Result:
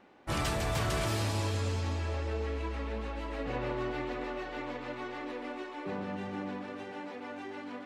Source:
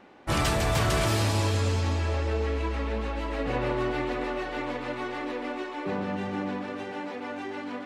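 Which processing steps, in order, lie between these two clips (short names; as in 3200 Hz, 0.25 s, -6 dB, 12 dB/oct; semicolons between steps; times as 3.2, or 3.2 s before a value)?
3.45–5.29 bell 9400 Hz -7 dB 0.3 oct; gain -6.5 dB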